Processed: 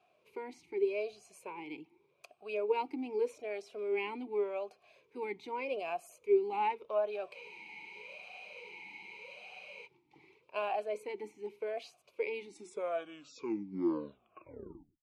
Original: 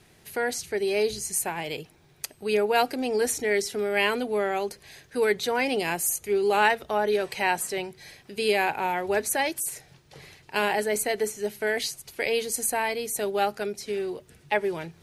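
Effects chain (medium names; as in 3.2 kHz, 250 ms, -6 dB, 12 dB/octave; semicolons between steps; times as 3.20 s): tape stop on the ending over 2.74 s; spectral freeze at 7.35 s, 2.50 s; talking filter a-u 0.84 Hz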